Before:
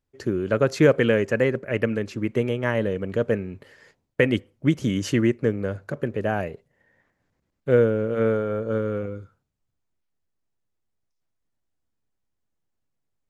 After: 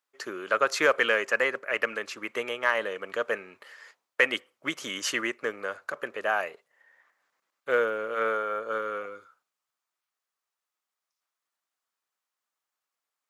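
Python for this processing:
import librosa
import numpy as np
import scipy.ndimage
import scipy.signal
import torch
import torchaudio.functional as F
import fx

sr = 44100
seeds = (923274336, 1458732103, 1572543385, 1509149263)

p1 = scipy.signal.sosfilt(scipy.signal.butter(2, 880.0, 'highpass', fs=sr, output='sos'), x)
p2 = fx.peak_eq(p1, sr, hz=1200.0, db=6.5, octaves=0.4)
p3 = 10.0 ** (-17.0 / 20.0) * np.tanh(p2 / 10.0 ** (-17.0 / 20.0))
y = p2 + (p3 * librosa.db_to_amplitude(-6.0))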